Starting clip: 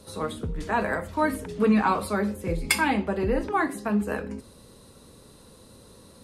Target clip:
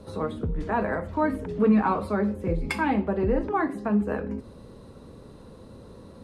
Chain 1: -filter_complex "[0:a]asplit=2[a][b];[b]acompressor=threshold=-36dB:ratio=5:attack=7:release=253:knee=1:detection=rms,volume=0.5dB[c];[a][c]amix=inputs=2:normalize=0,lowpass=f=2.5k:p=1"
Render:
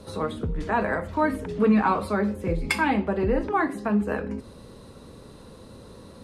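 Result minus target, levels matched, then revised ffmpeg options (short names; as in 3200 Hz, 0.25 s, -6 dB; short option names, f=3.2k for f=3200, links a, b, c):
2000 Hz band +3.0 dB
-filter_complex "[0:a]asplit=2[a][b];[b]acompressor=threshold=-36dB:ratio=5:attack=7:release=253:knee=1:detection=rms,volume=0.5dB[c];[a][c]amix=inputs=2:normalize=0,lowpass=f=1k:p=1"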